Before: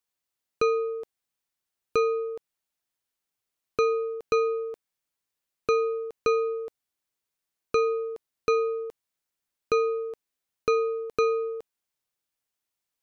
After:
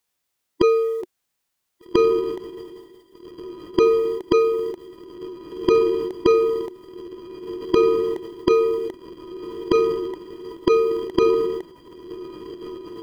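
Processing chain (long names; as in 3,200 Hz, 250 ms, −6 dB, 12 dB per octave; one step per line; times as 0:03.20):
feedback delay with all-pass diffusion 1,624 ms, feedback 54%, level −16 dB
formants moved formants −4 semitones
level +8.5 dB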